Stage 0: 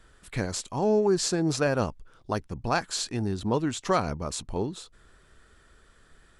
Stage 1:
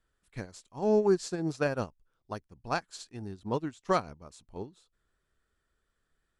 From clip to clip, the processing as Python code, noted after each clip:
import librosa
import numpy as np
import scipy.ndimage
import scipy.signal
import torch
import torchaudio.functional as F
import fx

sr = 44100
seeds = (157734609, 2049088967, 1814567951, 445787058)

y = fx.upward_expand(x, sr, threshold_db=-34.0, expansion=2.5)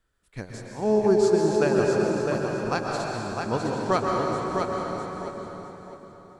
y = fx.echo_feedback(x, sr, ms=657, feedback_pct=26, wet_db=-5)
y = fx.rev_plate(y, sr, seeds[0], rt60_s=3.7, hf_ratio=0.7, predelay_ms=110, drr_db=-1.0)
y = F.gain(torch.from_numpy(y), 3.0).numpy()